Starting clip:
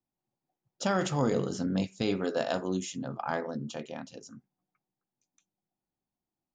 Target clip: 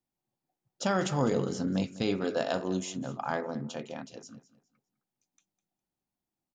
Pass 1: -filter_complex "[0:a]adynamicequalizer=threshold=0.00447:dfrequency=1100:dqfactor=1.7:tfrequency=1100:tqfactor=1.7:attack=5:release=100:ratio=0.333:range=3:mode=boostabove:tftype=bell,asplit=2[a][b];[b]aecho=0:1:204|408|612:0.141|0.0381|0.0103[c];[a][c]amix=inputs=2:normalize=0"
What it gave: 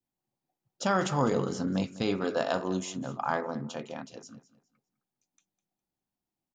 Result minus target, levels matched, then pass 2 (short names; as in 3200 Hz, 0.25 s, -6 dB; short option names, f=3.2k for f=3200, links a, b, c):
1000 Hz band +2.5 dB
-filter_complex "[0:a]asplit=2[a][b];[b]aecho=0:1:204|408|612:0.141|0.0381|0.0103[c];[a][c]amix=inputs=2:normalize=0"